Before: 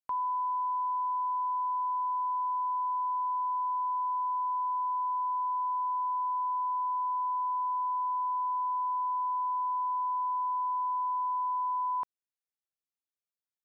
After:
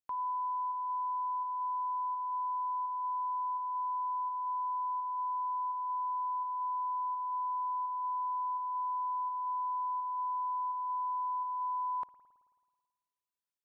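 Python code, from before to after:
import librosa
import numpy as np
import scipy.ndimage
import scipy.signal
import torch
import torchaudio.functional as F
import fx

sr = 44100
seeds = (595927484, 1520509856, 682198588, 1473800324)

p1 = fx.volume_shaper(x, sr, bpm=84, per_beat=1, depth_db=-8, release_ms=179.0, shape='slow start')
p2 = x + (p1 * 10.0 ** (-4.0 / 20.0))
p3 = fx.rev_spring(p2, sr, rt60_s=1.6, pass_ms=(54,), chirp_ms=50, drr_db=15.5)
y = p3 * 10.0 ** (-7.0 / 20.0)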